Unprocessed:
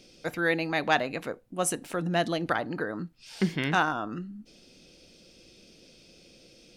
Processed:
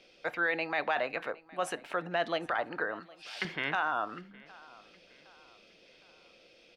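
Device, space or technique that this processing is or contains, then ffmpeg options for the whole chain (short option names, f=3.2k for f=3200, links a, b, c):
DJ mixer with the lows and highs turned down: -filter_complex "[0:a]acrossover=split=500 3500:gain=0.141 1 0.1[a][b][c];[a][b][c]amix=inputs=3:normalize=0,alimiter=limit=-22.5dB:level=0:latency=1:release=11,asettb=1/sr,asplit=3[d][e][f];[d]atrim=end=3.004[g];[e]atrim=start=3:end=3.45,asetpts=PTS-STARTPTS,afade=t=in:d=0.004:c=qsin,afade=t=out:st=0.446:d=0.004:c=qsin,tiltshelf=f=1.2k:g=-8.5[h];[f]atrim=start=3.446[i];[g][h]acrossfade=d=0.004:c1=hsin:c2=qsin[j];[j][i]acrossfade=d=0.004:c1=qsin:c2=hsin,aecho=1:1:763|1526|2289:0.075|0.0322|0.0139,volume=2.5dB"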